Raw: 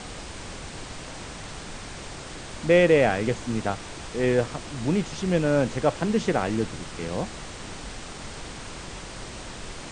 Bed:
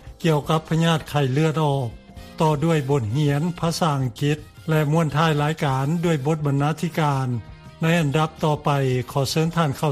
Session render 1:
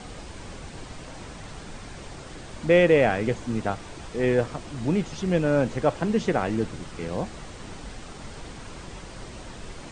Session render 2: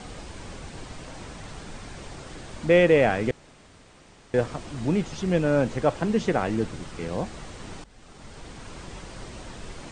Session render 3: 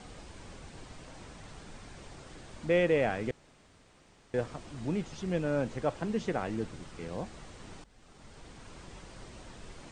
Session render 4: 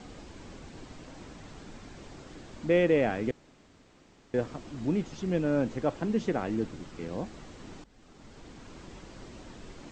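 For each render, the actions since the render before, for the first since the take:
broadband denoise 6 dB, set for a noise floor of −39 dBFS
0:03.31–0:04.34: fill with room tone; 0:07.84–0:09.07: fade in equal-power, from −18.5 dB
level −8.5 dB
Butterworth low-pass 8,000 Hz 72 dB per octave; parametric band 280 Hz +6.5 dB 1.1 octaves

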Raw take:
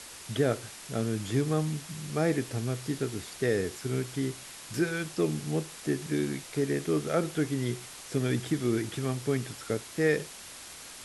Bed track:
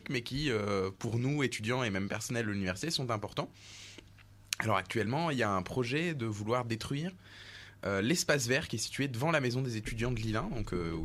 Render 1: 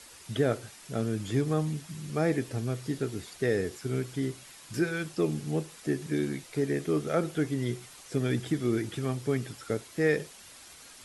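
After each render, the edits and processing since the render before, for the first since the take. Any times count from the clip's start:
broadband denoise 7 dB, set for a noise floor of −46 dBFS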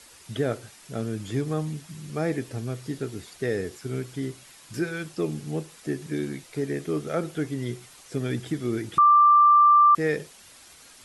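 0:08.98–0:09.95: beep over 1,180 Hz −12.5 dBFS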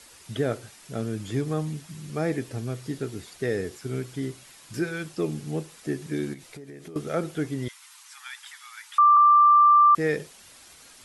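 0:06.33–0:06.96: downward compressor 16 to 1, threshold −38 dBFS
0:07.68–0:09.17: Butterworth high-pass 850 Hz 96 dB per octave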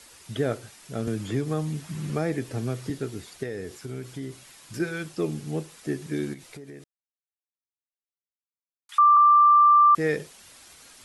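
0:01.07–0:02.90: multiband upward and downward compressor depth 70%
0:03.43–0:04.80: downward compressor 2.5 to 1, threshold −32 dBFS
0:06.84–0:08.89: silence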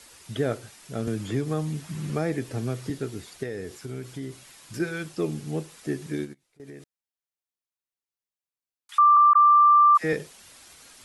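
0:06.12–0:06.60: expander for the loud parts 2.5 to 1, over −43 dBFS
0:09.33–0:10.13: all-pass dispersion lows, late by 61 ms, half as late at 930 Hz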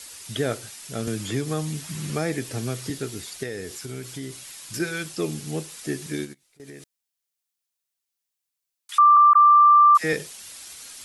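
high-shelf EQ 2,300 Hz +11 dB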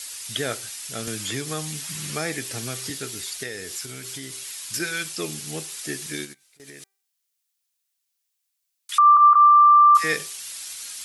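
tilt shelving filter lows −6 dB
hum removal 391.1 Hz, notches 6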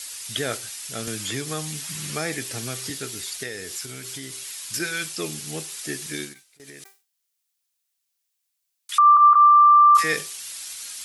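level that may fall only so fast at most 150 dB per second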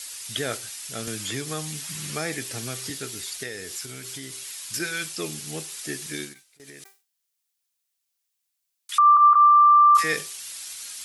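level −1.5 dB

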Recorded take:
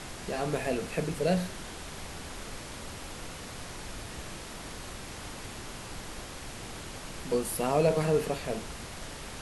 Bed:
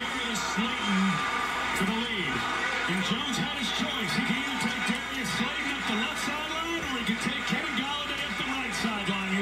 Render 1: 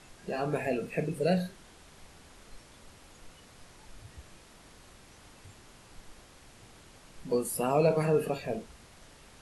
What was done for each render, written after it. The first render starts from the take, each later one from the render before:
noise reduction from a noise print 13 dB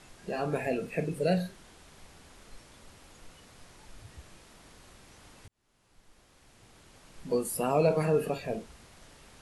0:05.48–0:07.27: fade in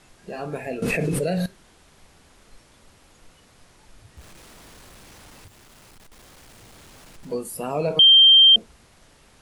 0:00.82–0:01.46: envelope flattener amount 100%
0:04.17–0:07.34: converter with a step at zero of −45 dBFS
0:07.99–0:08.56: beep over 3,160 Hz −8.5 dBFS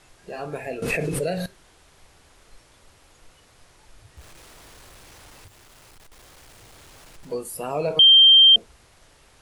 parametric band 210 Hz −7.5 dB 0.8 octaves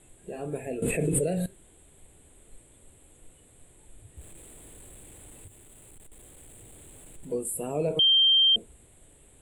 drawn EQ curve 130 Hz 0 dB, 280 Hz +2 dB, 420 Hz 0 dB, 1,200 Hz −14 dB, 2,200 Hz −9 dB, 3,600 Hz −8 dB, 5,600 Hz −29 dB, 7,900 Hz +9 dB, 13,000 Hz −4 dB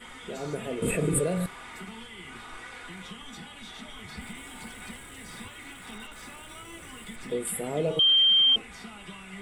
mix in bed −14.5 dB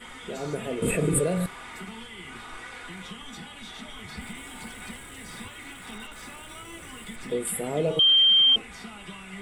level +2 dB

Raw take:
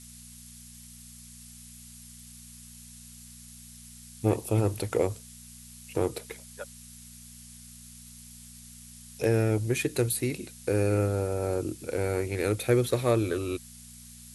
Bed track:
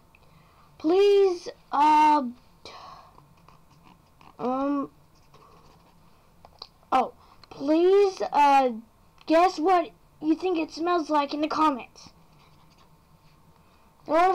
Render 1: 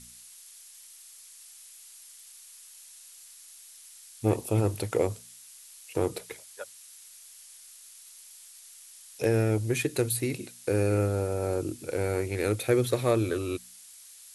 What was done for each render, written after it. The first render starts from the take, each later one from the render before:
hum removal 60 Hz, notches 4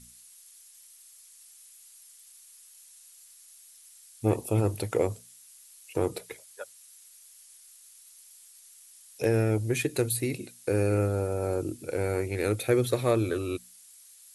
broadband denoise 6 dB, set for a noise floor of −51 dBFS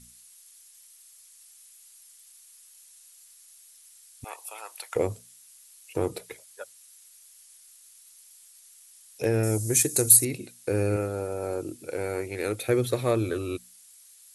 0:04.24–0:04.96: high-pass filter 880 Hz 24 dB per octave
0:09.43–0:10.25: high shelf with overshoot 4,600 Hz +14 dB, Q 1.5
0:10.96–0:12.69: low-shelf EQ 180 Hz −9.5 dB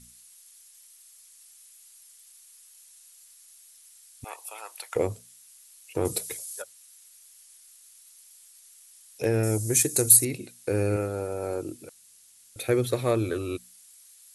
0:06.05–0:06.62: bass and treble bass +5 dB, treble +15 dB
0:11.89–0:12.56: fill with room tone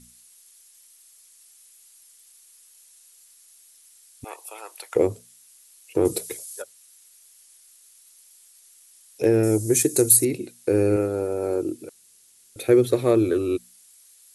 parametric band 350 Hz +9.5 dB 1.1 octaves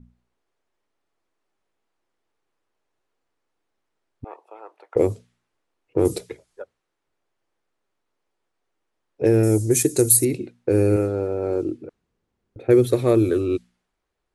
low-pass that shuts in the quiet parts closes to 810 Hz, open at −15.5 dBFS
low-shelf EQ 170 Hz +7.5 dB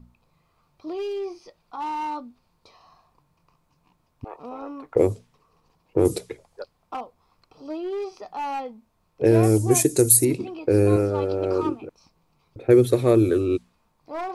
mix in bed track −10.5 dB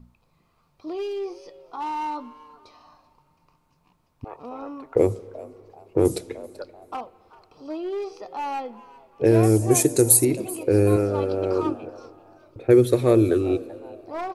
echo with shifted repeats 384 ms, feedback 30%, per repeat +150 Hz, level −20.5 dB
spring reverb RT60 3.3 s, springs 30/38/45 ms, chirp 45 ms, DRR 19.5 dB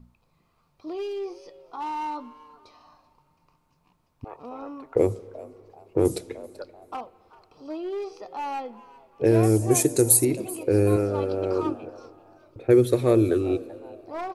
level −2 dB

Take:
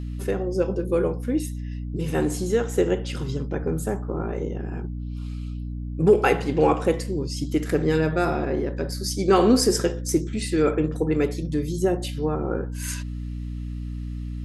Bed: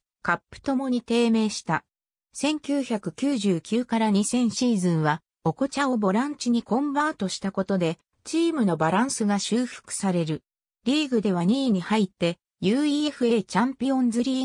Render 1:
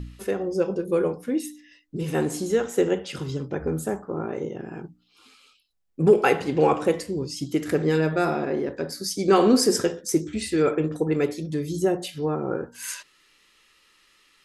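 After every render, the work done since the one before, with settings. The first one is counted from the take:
hum removal 60 Hz, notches 5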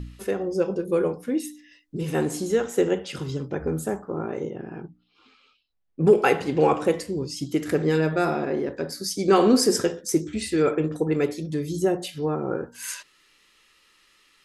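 0:04.50–0:06.05: high-frequency loss of the air 200 metres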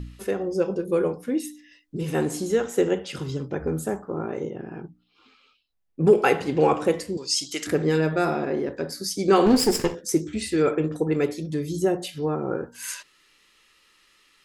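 0:07.17–0:07.67: meter weighting curve ITU-R 468
0:09.46–0:09.95: lower of the sound and its delayed copy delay 0.41 ms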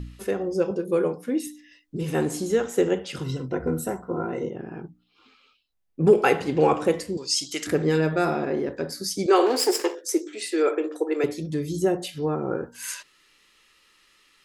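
0:00.71–0:01.47: high-pass filter 130 Hz
0:03.24–0:04.49: EQ curve with evenly spaced ripples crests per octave 2, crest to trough 12 dB
0:09.26–0:11.24: Butterworth high-pass 310 Hz 48 dB per octave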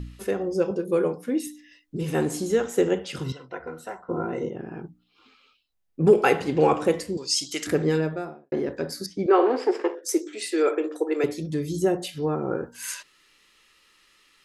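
0:03.32–0:04.09: three-way crossover with the lows and the highs turned down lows −18 dB, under 600 Hz, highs −19 dB, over 5,100 Hz
0:07.78–0:08.52: fade out and dull
0:09.06–0:10.03: low-pass filter 1,900 Hz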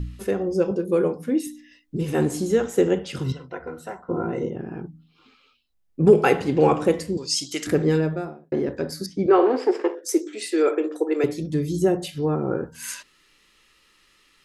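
low-shelf EQ 280 Hz +7 dB
hum removal 80.48 Hz, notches 3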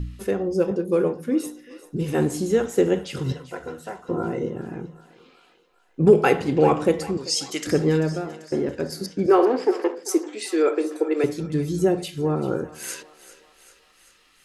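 feedback echo with a high-pass in the loop 390 ms, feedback 63%, high-pass 600 Hz, level −16 dB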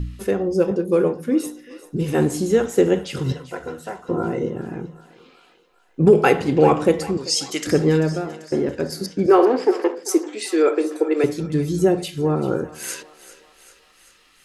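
level +3 dB
brickwall limiter −3 dBFS, peak gain reduction 2.5 dB

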